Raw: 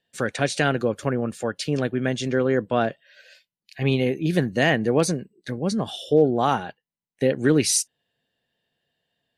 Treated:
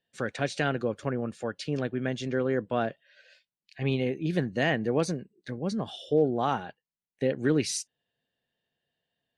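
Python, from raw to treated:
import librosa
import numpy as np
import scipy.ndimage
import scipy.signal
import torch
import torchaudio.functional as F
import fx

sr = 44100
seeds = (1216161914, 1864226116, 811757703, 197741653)

y = fx.air_absorb(x, sr, metres=61.0)
y = F.gain(torch.from_numpy(y), -6.0).numpy()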